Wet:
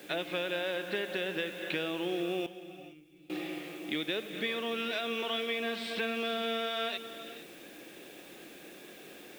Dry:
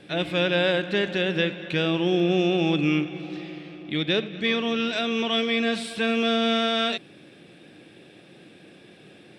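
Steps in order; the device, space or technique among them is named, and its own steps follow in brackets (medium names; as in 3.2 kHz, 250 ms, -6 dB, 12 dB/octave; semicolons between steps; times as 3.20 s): baby monitor (band-pass 310–4400 Hz; compression, threshold -32 dBFS, peak gain reduction 12.5 dB; white noise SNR 22 dB); 2.46–3.30 s: amplifier tone stack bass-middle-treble 10-0-1; gated-style reverb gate 490 ms rising, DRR 11.5 dB; trim +1 dB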